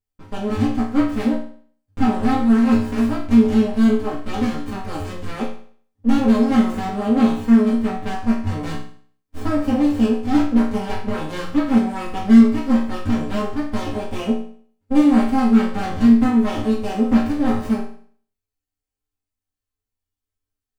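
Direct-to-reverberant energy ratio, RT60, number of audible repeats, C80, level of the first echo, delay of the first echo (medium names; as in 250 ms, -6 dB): -8.5 dB, 0.50 s, no echo, 8.5 dB, no echo, no echo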